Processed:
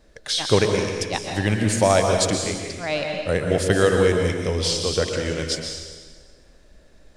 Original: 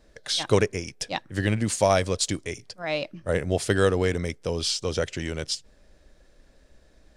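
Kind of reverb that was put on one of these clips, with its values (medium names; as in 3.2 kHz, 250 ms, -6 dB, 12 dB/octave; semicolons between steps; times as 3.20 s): plate-style reverb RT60 1.5 s, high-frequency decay 0.9×, pre-delay 110 ms, DRR 2 dB; trim +2.5 dB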